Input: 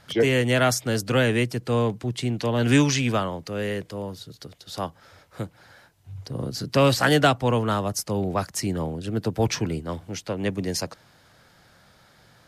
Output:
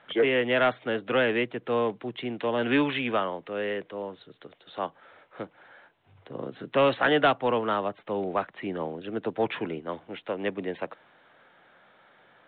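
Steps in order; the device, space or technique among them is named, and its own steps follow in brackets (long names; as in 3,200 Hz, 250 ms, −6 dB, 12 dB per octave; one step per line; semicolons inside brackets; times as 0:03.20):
telephone (band-pass filter 320–3,200 Hz; soft clipping −12 dBFS, distortion −20 dB; mu-law 64 kbit/s 8,000 Hz)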